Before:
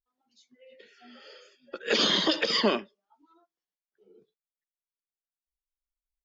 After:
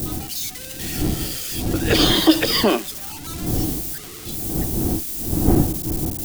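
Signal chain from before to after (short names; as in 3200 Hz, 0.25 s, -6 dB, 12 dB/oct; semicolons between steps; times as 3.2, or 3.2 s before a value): switching spikes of -24.5 dBFS; wind noise 180 Hz -31 dBFS; small resonant body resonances 320/740 Hz, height 11 dB, ringing for 55 ms; gain +5 dB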